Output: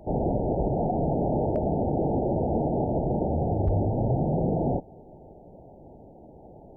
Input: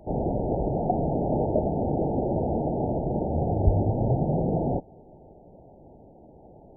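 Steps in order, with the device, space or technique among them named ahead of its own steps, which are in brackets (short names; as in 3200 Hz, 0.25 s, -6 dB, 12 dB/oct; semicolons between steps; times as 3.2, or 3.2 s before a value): clipper into limiter (hard clip -12 dBFS, distortion -26 dB; limiter -19 dBFS, peak gain reduction 7 dB); gain +2 dB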